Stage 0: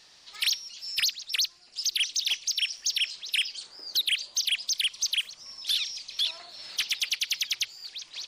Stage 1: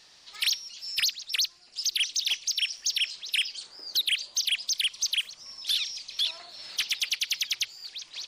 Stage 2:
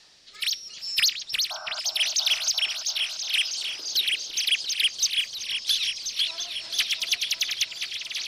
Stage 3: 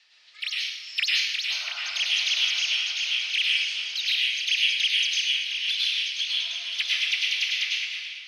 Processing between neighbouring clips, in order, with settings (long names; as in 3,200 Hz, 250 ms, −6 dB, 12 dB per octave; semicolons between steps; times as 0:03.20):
no processing that can be heard
sound drawn into the spectrogram noise, 0:01.50–0:01.80, 600–1,600 Hz −35 dBFS; rotating-speaker cabinet horn 0.75 Hz, later 6.3 Hz, at 0:04.21; echo whose low-pass opens from repeat to repeat 344 ms, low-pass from 750 Hz, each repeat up 2 octaves, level −3 dB; level +4.5 dB
fade-out on the ending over 0.53 s; resonant band-pass 2,400 Hz, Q 1.9; dense smooth reverb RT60 1.2 s, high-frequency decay 0.75×, pre-delay 85 ms, DRR −5 dB